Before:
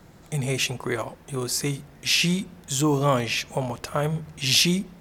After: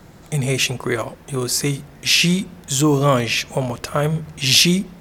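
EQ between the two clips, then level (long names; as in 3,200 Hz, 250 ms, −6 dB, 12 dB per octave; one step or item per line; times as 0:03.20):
dynamic equaliser 840 Hz, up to −5 dB, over −45 dBFS, Q 3.8
+6.0 dB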